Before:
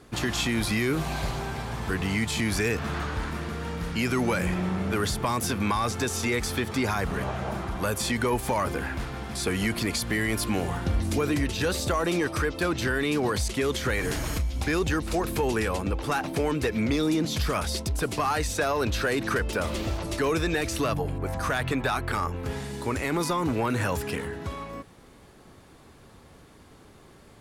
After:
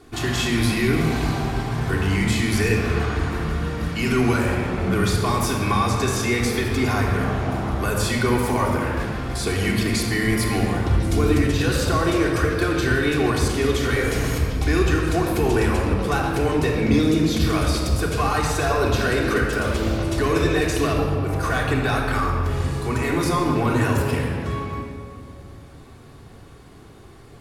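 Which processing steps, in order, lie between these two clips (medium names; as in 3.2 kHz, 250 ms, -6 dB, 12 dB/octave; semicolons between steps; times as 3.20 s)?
simulated room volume 3800 m³, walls mixed, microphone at 3.4 m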